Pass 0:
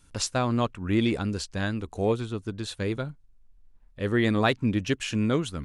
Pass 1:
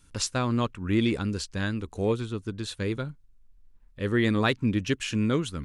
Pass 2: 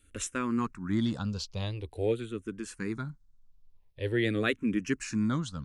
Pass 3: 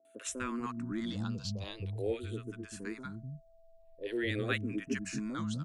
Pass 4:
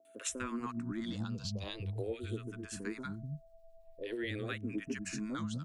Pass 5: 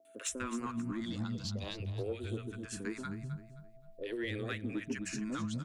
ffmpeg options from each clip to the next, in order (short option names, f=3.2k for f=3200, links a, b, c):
-af "equalizer=f=700:w=2.6:g=-6.5"
-filter_complex "[0:a]asplit=2[a][b];[b]afreqshift=-0.46[c];[a][c]amix=inputs=2:normalize=1,volume=-1.5dB"
-filter_complex "[0:a]aeval=exprs='val(0)+0.00126*sin(2*PI*660*n/s)':c=same,acrossover=split=220|690[a][b][c];[c]adelay=50[d];[a]adelay=250[e];[e][b][d]amix=inputs=3:normalize=0,volume=-3.5dB"
-filter_complex "[0:a]acompressor=threshold=-37dB:ratio=6,acrossover=split=1400[a][b];[a]aeval=exprs='val(0)*(1-0.5/2+0.5/2*cos(2*PI*9*n/s))':c=same[c];[b]aeval=exprs='val(0)*(1-0.5/2-0.5/2*cos(2*PI*9*n/s))':c=same[d];[c][d]amix=inputs=2:normalize=0,volume=4.5dB"
-af "asoftclip=type=tanh:threshold=-25.5dB,aecho=1:1:263|526|789:0.237|0.0688|0.0199,volume=1dB"